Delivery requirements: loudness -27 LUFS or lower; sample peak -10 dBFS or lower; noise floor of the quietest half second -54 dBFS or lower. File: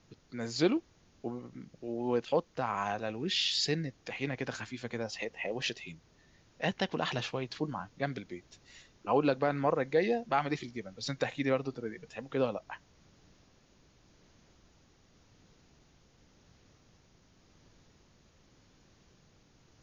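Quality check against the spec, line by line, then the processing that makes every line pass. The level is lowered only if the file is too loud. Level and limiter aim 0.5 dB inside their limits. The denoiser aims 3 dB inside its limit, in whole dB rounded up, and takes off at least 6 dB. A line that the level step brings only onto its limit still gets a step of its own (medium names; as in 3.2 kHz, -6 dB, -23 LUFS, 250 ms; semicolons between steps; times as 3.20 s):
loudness -33.5 LUFS: pass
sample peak -14.0 dBFS: pass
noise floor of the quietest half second -64 dBFS: pass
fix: none needed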